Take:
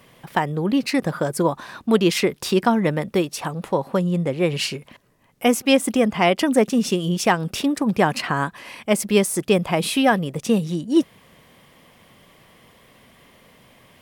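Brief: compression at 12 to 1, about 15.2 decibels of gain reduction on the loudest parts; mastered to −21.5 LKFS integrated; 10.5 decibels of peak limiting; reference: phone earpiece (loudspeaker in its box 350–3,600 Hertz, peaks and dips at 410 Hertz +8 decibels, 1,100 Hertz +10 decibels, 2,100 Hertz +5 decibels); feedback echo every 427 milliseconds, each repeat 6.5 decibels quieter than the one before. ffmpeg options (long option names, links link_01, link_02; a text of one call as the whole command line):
ffmpeg -i in.wav -af "acompressor=threshold=-27dB:ratio=12,alimiter=level_in=0.5dB:limit=-24dB:level=0:latency=1,volume=-0.5dB,highpass=350,equalizer=frequency=410:width_type=q:width=4:gain=8,equalizer=frequency=1100:width_type=q:width=4:gain=10,equalizer=frequency=2100:width_type=q:width=4:gain=5,lowpass=frequency=3600:width=0.5412,lowpass=frequency=3600:width=1.3066,aecho=1:1:427|854|1281|1708|2135|2562:0.473|0.222|0.105|0.0491|0.0231|0.0109,volume=12.5dB" out.wav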